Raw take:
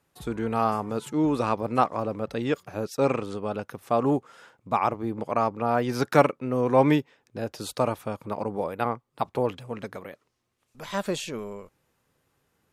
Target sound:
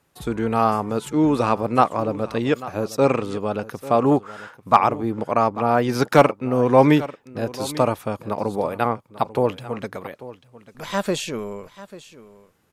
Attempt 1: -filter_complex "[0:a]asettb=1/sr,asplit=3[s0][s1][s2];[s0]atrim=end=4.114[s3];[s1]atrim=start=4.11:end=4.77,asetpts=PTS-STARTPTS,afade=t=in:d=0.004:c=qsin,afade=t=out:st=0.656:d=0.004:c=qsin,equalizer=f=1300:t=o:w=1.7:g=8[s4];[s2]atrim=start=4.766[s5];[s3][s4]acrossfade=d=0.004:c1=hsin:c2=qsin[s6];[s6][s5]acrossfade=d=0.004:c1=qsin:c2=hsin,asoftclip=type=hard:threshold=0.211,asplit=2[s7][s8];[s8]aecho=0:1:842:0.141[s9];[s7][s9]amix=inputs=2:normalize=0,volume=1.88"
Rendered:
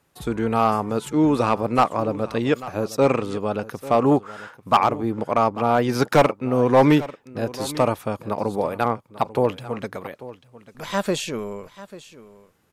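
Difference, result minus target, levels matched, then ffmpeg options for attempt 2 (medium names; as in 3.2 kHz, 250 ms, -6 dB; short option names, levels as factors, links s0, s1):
hard clipper: distortion +13 dB
-filter_complex "[0:a]asettb=1/sr,asplit=3[s0][s1][s2];[s0]atrim=end=4.114[s3];[s1]atrim=start=4.11:end=4.77,asetpts=PTS-STARTPTS,afade=t=in:d=0.004:c=qsin,afade=t=out:st=0.656:d=0.004:c=qsin,equalizer=f=1300:t=o:w=1.7:g=8[s4];[s2]atrim=start=4.766[s5];[s3][s4]acrossfade=d=0.004:c1=hsin:c2=qsin[s6];[s6][s5]acrossfade=d=0.004:c1=qsin:c2=hsin,asoftclip=type=hard:threshold=0.447,asplit=2[s7][s8];[s8]aecho=0:1:842:0.141[s9];[s7][s9]amix=inputs=2:normalize=0,volume=1.88"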